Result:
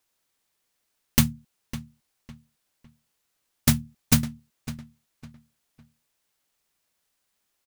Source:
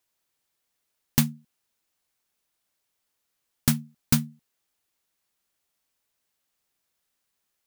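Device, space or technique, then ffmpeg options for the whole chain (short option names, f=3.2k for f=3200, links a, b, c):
octave pedal: -filter_complex "[0:a]asplit=2[a][b];[b]asetrate=22050,aresample=44100,atempo=2,volume=-6dB[c];[a][c]amix=inputs=2:normalize=0,asplit=2[d][e];[e]adelay=555,lowpass=f=3.6k:p=1,volume=-14dB,asplit=2[f][g];[g]adelay=555,lowpass=f=3.6k:p=1,volume=0.31,asplit=2[h][i];[i]adelay=555,lowpass=f=3.6k:p=1,volume=0.31[j];[d][f][h][j]amix=inputs=4:normalize=0,volume=1.5dB"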